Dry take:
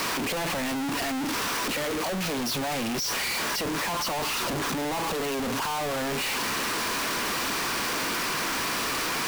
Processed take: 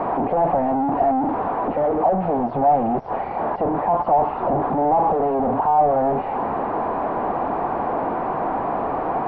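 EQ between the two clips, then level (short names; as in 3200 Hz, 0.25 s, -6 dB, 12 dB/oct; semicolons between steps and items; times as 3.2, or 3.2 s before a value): synth low-pass 760 Hz, resonance Q 4.9; air absorption 290 m; +6.0 dB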